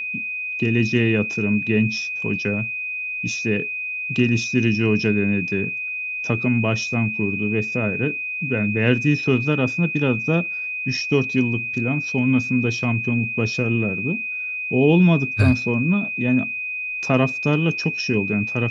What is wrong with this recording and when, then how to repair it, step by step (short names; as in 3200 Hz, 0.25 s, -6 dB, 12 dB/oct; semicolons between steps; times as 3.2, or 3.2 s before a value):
tone 2500 Hz -25 dBFS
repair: notch 2500 Hz, Q 30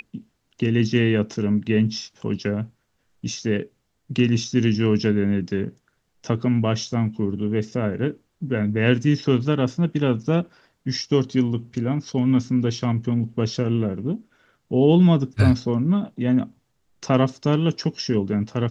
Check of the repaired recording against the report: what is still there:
none